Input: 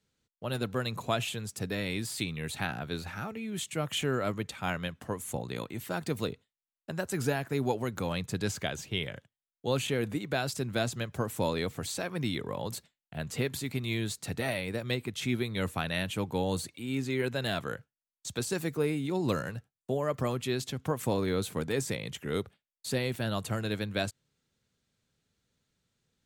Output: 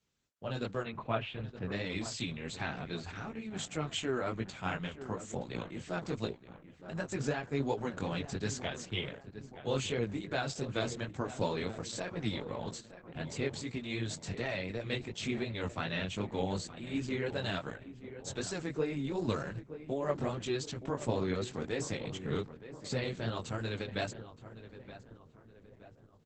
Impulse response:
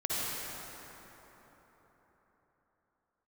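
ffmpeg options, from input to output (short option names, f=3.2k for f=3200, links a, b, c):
-filter_complex "[0:a]asettb=1/sr,asplit=3[a][b][c];[a]atrim=end=0.834[d];[b]atrim=start=0.83:end=1.72,asetpts=PTS-STARTPTS,afade=t=in:d=0.004:c=qsin,afade=t=out:st=0.886:d=0.004:c=qsin,lowpass=f=2.8k:w=0.5412,lowpass=f=2.8k:w=1.3066[e];[c]atrim=start=1.716[f];[d][e]acrossfade=d=0.004:c1=hsin:c2=qsin[g];[g][f]acrossfade=d=0.004:c1=qsin:c2=hsin,asplit=3[h][i][j];[h]afade=t=out:st=22.03:d=0.02[k];[i]adynamicequalizer=threshold=0.00282:dfrequency=140:dqfactor=2.5:tfrequency=140:tqfactor=2.5:attack=5:release=100:ratio=0.375:range=3:mode=boostabove:tftype=bell,afade=t=in:st=22.03:d=0.02,afade=t=out:st=22.93:d=0.02[l];[j]afade=t=in:st=22.93:d=0.02[m];[k][l][m]amix=inputs=3:normalize=0,flanger=delay=17:depth=5.1:speed=2.7,asplit=3[n][o][p];[n]afade=t=out:st=6.31:d=0.02[q];[o]asuperstop=centerf=1200:order=12:qfactor=1.9,afade=t=in:st=6.31:d=0.02,afade=t=out:st=6.91:d=0.02[r];[p]afade=t=in:st=6.91:d=0.02[s];[q][r][s]amix=inputs=3:normalize=0,asplit=2[t][u];[u]adelay=921,lowpass=f=1.8k:p=1,volume=-12dB,asplit=2[v][w];[w]adelay=921,lowpass=f=1.8k:p=1,volume=0.52,asplit=2[x][y];[y]adelay=921,lowpass=f=1.8k:p=1,volume=0.52,asplit=2[z][aa];[aa]adelay=921,lowpass=f=1.8k:p=1,volume=0.52,asplit=2[ab][ac];[ac]adelay=921,lowpass=f=1.8k:p=1,volume=0.52[ad];[t][v][x][z][ab][ad]amix=inputs=6:normalize=0" -ar 48000 -c:a libopus -b:a 10k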